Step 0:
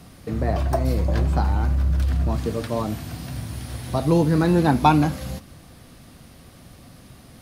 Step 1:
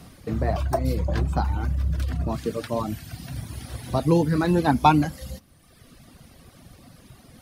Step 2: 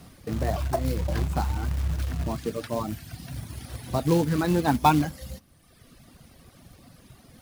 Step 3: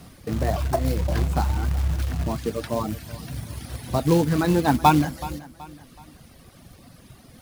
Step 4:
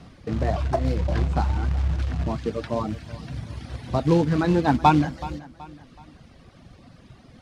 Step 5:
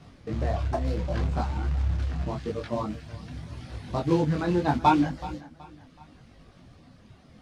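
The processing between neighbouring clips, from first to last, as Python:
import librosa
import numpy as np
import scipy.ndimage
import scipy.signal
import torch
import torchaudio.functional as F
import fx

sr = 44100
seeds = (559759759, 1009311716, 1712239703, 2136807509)

y1 = fx.dereverb_blind(x, sr, rt60_s=1.2)
y2 = fx.quant_float(y1, sr, bits=2)
y2 = F.gain(torch.from_numpy(y2), -2.5).numpy()
y3 = fx.echo_feedback(y2, sr, ms=376, feedback_pct=40, wet_db=-17.5)
y3 = F.gain(torch.from_numpy(y3), 3.0).numpy()
y4 = fx.air_absorb(y3, sr, metres=110.0)
y5 = fx.detune_double(y4, sr, cents=27)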